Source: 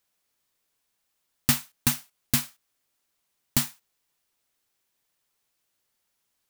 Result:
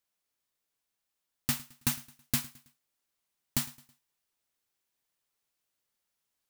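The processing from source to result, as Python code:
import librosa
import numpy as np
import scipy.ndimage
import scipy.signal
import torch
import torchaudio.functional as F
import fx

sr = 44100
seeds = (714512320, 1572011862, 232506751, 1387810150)

y = fx.rider(x, sr, range_db=10, speed_s=0.5)
y = fx.echo_feedback(y, sr, ms=108, feedback_pct=42, wet_db=-21)
y = y * 10.0 ** (-6.5 / 20.0)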